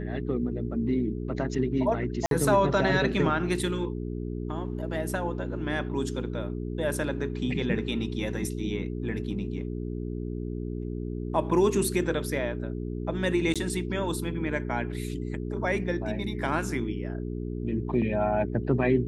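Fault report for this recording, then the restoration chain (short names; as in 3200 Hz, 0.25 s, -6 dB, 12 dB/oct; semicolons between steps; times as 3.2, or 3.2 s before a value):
hum 60 Hz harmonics 7 -33 dBFS
2.26–2.31 gap 52 ms
13.54–13.56 gap 16 ms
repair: de-hum 60 Hz, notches 7; interpolate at 2.26, 52 ms; interpolate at 13.54, 16 ms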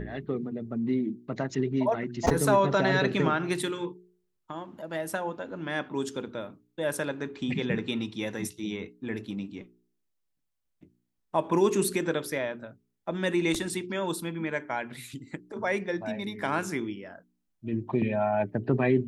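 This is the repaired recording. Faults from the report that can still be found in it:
none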